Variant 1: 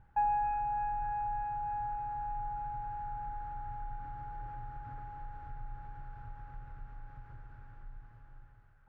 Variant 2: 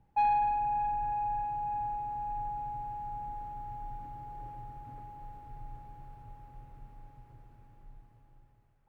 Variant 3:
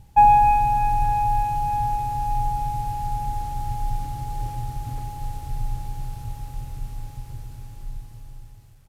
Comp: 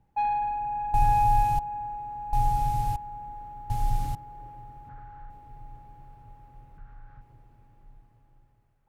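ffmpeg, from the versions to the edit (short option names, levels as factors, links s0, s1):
-filter_complex "[2:a]asplit=3[s0][s1][s2];[0:a]asplit=2[s3][s4];[1:a]asplit=6[s5][s6][s7][s8][s9][s10];[s5]atrim=end=0.942[s11];[s0]atrim=start=0.938:end=1.592[s12];[s6]atrim=start=1.588:end=2.332[s13];[s1]atrim=start=2.328:end=2.962[s14];[s7]atrim=start=2.958:end=3.702[s15];[s2]atrim=start=3.698:end=4.152[s16];[s8]atrim=start=4.148:end=4.892[s17];[s3]atrim=start=4.888:end=5.302[s18];[s9]atrim=start=5.298:end=6.782[s19];[s4]atrim=start=6.778:end=7.212[s20];[s10]atrim=start=7.208[s21];[s11][s12]acrossfade=d=0.004:c1=hsin:c2=hsin[s22];[s22][s13]acrossfade=d=0.004:c1=hsin:c2=hsin[s23];[s23][s14]acrossfade=d=0.004:c1=hsin:c2=hsin[s24];[s24][s15]acrossfade=d=0.004:c1=hsin:c2=hsin[s25];[s25][s16]acrossfade=d=0.004:c1=hsin:c2=hsin[s26];[s26][s17]acrossfade=d=0.004:c1=hsin:c2=hsin[s27];[s27][s18]acrossfade=d=0.004:c1=hsin:c2=hsin[s28];[s28][s19]acrossfade=d=0.004:c1=hsin:c2=hsin[s29];[s29][s20]acrossfade=d=0.004:c1=hsin:c2=hsin[s30];[s30][s21]acrossfade=d=0.004:c1=hsin:c2=hsin"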